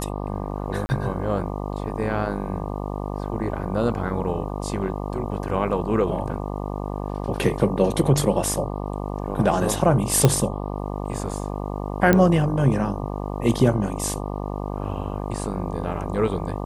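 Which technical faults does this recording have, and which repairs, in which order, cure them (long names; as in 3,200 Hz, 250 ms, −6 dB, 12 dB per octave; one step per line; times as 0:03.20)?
mains buzz 50 Hz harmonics 24 −29 dBFS
0:00.86–0:00.89: drop-out 30 ms
0:10.25: click −3 dBFS
0:12.13: click −5 dBFS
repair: click removal
hum removal 50 Hz, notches 24
repair the gap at 0:00.86, 30 ms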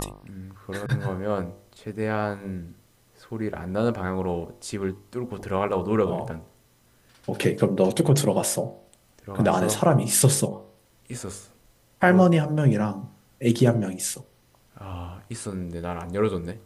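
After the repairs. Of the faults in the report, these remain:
none of them is left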